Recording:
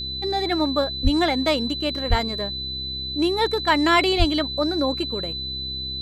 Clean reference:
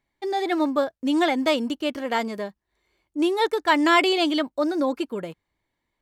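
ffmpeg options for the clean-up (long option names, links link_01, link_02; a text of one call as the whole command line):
ffmpeg -i in.wav -filter_complex "[0:a]bandreject=frequency=65.8:width_type=h:width=4,bandreject=frequency=131.6:width_type=h:width=4,bandreject=frequency=197.4:width_type=h:width=4,bandreject=frequency=263.2:width_type=h:width=4,bandreject=frequency=329:width_type=h:width=4,bandreject=frequency=394.8:width_type=h:width=4,bandreject=frequency=4000:width=30,asplit=3[link_01][link_02][link_03];[link_01]afade=type=out:start_time=1.03:duration=0.02[link_04];[link_02]highpass=frequency=140:width=0.5412,highpass=frequency=140:width=1.3066,afade=type=in:start_time=1.03:duration=0.02,afade=type=out:start_time=1.15:duration=0.02[link_05];[link_03]afade=type=in:start_time=1.15:duration=0.02[link_06];[link_04][link_05][link_06]amix=inputs=3:normalize=0,asplit=3[link_07][link_08][link_09];[link_07]afade=type=out:start_time=2.09:duration=0.02[link_10];[link_08]highpass=frequency=140:width=0.5412,highpass=frequency=140:width=1.3066,afade=type=in:start_time=2.09:duration=0.02,afade=type=out:start_time=2.21:duration=0.02[link_11];[link_09]afade=type=in:start_time=2.21:duration=0.02[link_12];[link_10][link_11][link_12]amix=inputs=3:normalize=0,asplit=3[link_13][link_14][link_15];[link_13]afade=type=out:start_time=4.18:duration=0.02[link_16];[link_14]highpass=frequency=140:width=0.5412,highpass=frequency=140:width=1.3066,afade=type=in:start_time=4.18:duration=0.02,afade=type=out:start_time=4.3:duration=0.02[link_17];[link_15]afade=type=in:start_time=4.3:duration=0.02[link_18];[link_16][link_17][link_18]amix=inputs=3:normalize=0" out.wav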